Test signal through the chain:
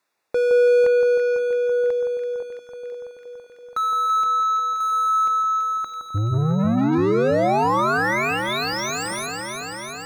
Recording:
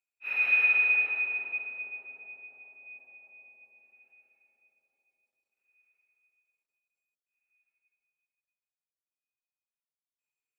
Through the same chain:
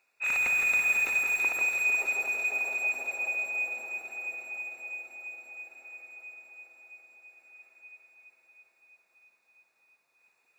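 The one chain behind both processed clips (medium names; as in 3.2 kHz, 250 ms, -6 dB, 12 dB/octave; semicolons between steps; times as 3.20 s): hum notches 60/120/180/240/300 Hz; overdrive pedal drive 34 dB, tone 1.2 kHz, clips at -14.5 dBFS; Butterworth band-stop 3.1 kHz, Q 5.4; echo whose repeats swap between lows and highs 166 ms, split 1.4 kHz, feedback 88%, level -5 dB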